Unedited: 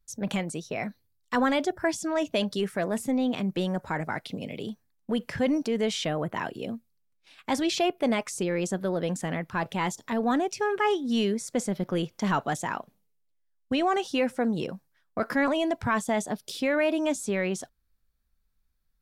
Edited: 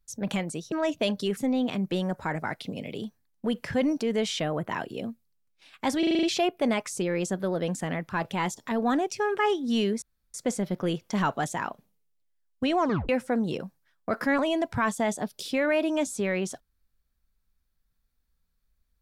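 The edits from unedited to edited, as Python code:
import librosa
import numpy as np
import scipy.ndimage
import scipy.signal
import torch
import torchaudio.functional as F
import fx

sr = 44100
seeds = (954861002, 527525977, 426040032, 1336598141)

y = fx.edit(x, sr, fx.cut(start_s=0.72, length_s=1.33),
    fx.cut(start_s=2.7, length_s=0.32),
    fx.stutter(start_s=7.64, slice_s=0.04, count=7),
    fx.insert_room_tone(at_s=11.43, length_s=0.32),
    fx.tape_stop(start_s=13.87, length_s=0.31), tone=tone)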